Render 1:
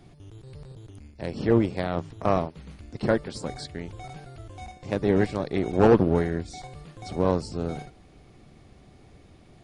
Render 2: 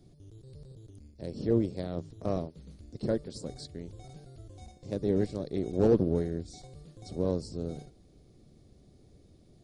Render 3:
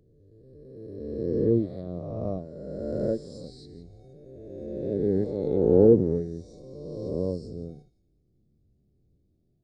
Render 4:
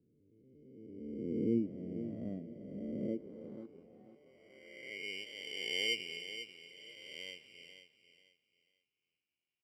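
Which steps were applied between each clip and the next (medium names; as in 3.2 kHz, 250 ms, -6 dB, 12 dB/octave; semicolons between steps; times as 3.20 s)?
high-order bell 1.5 kHz -12 dB 2.3 oct; trim -5.5 dB
reverse spectral sustain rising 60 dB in 2.93 s; feedback echo behind a high-pass 171 ms, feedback 36%, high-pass 2 kHz, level -9 dB; spectral contrast expander 1.5:1; trim +2 dB
sample-and-hold 17×; band-pass sweep 240 Hz -> 2.9 kHz, 3.02–5.23 s; on a send: feedback delay 490 ms, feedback 26%, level -11 dB; on the sum: trim -3.5 dB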